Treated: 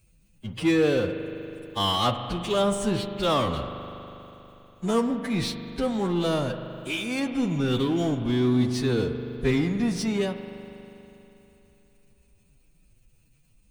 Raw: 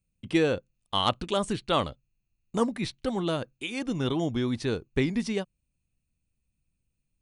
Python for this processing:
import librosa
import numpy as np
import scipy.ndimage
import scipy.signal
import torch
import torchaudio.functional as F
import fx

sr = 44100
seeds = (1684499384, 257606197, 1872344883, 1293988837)

y = fx.power_curve(x, sr, exponent=0.7)
y = fx.stretch_vocoder(y, sr, factor=1.9)
y = fx.rev_spring(y, sr, rt60_s=3.3, pass_ms=(40,), chirp_ms=55, drr_db=8.0)
y = y * 10.0 ** (-1.5 / 20.0)